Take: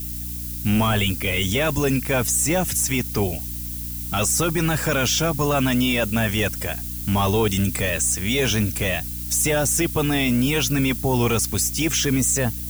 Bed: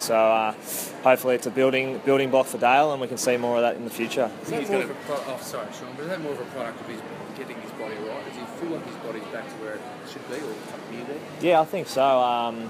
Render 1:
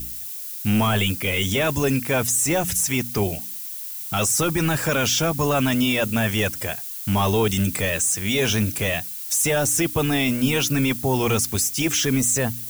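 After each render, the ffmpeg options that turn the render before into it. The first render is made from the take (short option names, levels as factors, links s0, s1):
-af "bandreject=f=60:t=h:w=4,bandreject=f=120:t=h:w=4,bandreject=f=180:t=h:w=4,bandreject=f=240:t=h:w=4,bandreject=f=300:t=h:w=4"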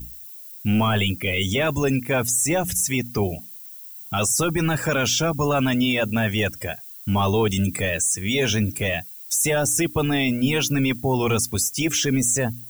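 -af "afftdn=nr=12:nf=-33"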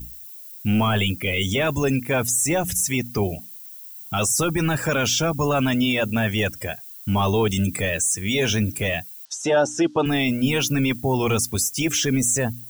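-filter_complex "[0:a]asettb=1/sr,asplit=3[s0][s1][s2];[s0]atrim=end=9.254[s3];[s1]atrim=start=9.25:end=10.06,asetpts=PTS-STARTPTS,afade=t=in:d=0.004:c=qsin,afade=t=out:st=0.806:d=0.004:c=qsin,highpass=210,equalizer=f=320:t=q:w=4:g=5,equalizer=f=570:t=q:w=4:g=5,equalizer=f=860:t=q:w=4:g=7,equalizer=f=1400:t=q:w=4:g=4,equalizer=f=2200:t=q:w=4:g=-10,lowpass=f=5700:w=0.5412,lowpass=f=5700:w=1.3066[s4];[s2]atrim=start=10.056[s5];[s3][s4]acrossfade=d=0.004:c1=hsin:c2=qsin[s6];[s6][s5]acrossfade=d=0.004:c1=qsin:c2=hsin"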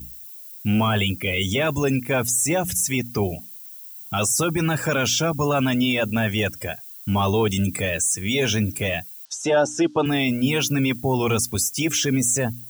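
-af "highpass=60,bandreject=f=1900:w=23"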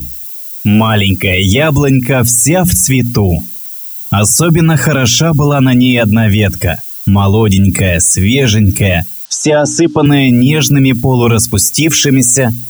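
-filter_complex "[0:a]acrossover=split=240|2700[s0][s1][s2];[s0]dynaudnorm=f=390:g=9:m=2.66[s3];[s3][s1][s2]amix=inputs=3:normalize=0,alimiter=level_in=5.96:limit=0.891:release=50:level=0:latency=1"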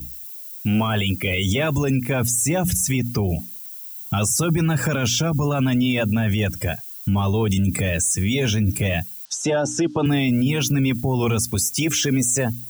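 -af "volume=0.266"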